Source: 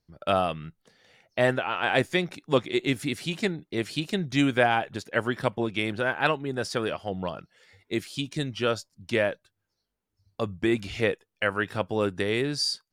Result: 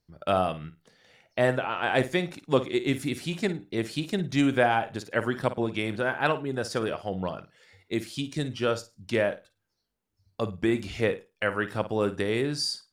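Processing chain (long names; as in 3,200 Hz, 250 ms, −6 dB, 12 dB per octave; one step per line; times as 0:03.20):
dynamic equaliser 3,000 Hz, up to −4 dB, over −40 dBFS, Q 0.74
flutter between parallel walls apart 9.2 metres, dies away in 0.25 s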